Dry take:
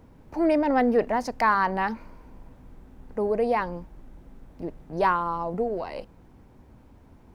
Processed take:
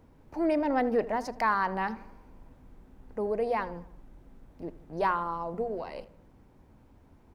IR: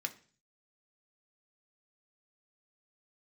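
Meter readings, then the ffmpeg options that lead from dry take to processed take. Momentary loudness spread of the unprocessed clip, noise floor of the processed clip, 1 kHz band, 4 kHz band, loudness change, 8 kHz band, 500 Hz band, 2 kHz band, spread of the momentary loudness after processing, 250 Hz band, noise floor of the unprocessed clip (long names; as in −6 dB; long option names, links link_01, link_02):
17 LU, −59 dBFS, −5.0 dB, −5.0 dB, −5.0 dB, can't be measured, −5.0 dB, −5.0 dB, 17 LU, −5.5 dB, −54 dBFS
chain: -filter_complex "[0:a]bandreject=frequency=60:width_type=h:width=6,bandreject=frequency=120:width_type=h:width=6,bandreject=frequency=180:width_type=h:width=6,bandreject=frequency=240:width_type=h:width=6,asplit=2[link_01][link_02];[link_02]adelay=79,lowpass=frequency=2500:poles=1,volume=-17dB,asplit=2[link_03][link_04];[link_04]adelay=79,lowpass=frequency=2500:poles=1,volume=0.53,asplit=2[link_05][link_06];[link_06]adelay=79,lowpass=frequency=2500:poles=1,volume=0.53,asplit=2[link_07][link_08];[link_08]adelay=79,lowpass=frequency=2500:poles=1,volume=0.53,asplit=2[link_09][link_10];[link_10]adelay=79,lowpass=frequency=2500:poles=1,volume=0.53[link_11];[link_01][link_03][link_05][link_07][link_09][link_11]amix=inputs=6:normalize=0,volume=-5dB"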